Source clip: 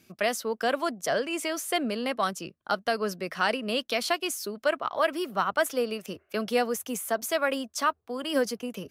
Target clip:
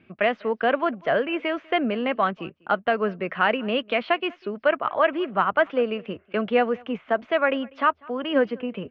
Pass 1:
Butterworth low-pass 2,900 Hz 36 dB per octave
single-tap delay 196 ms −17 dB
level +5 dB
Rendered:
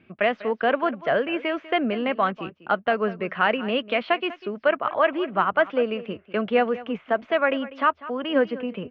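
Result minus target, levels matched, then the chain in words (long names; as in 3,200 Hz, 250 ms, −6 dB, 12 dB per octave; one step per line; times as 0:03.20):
echo-to-direct +8.5 dB
Butterworth low-pass 2,900 Hz 36 dB per octave
single-tap delay 196 ms −25.5 dB
level +5 dB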